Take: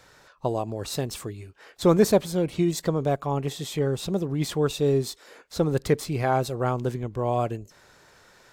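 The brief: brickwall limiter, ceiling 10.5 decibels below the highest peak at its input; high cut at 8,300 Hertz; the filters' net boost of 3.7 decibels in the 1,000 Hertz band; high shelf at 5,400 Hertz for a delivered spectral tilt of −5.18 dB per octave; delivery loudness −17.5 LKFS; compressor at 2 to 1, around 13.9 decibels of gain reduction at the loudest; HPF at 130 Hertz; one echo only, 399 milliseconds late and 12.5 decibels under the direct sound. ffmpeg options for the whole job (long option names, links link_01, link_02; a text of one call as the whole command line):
ffmpeg -i in.wav -af "highpass=130,lowpass=8300,equalizer=frequency=1000:width_type=o:gain=5.5,highshelf=frequency=5400:gain=-8.5,acompressor=threshold=-39dB:ratio=2,alimiter=level_in=4.5dB:limit=-24dB:level=0:latency=1,volume=-4.5dB,aecho=1:1:399:0.237,volume=23dB" out.wav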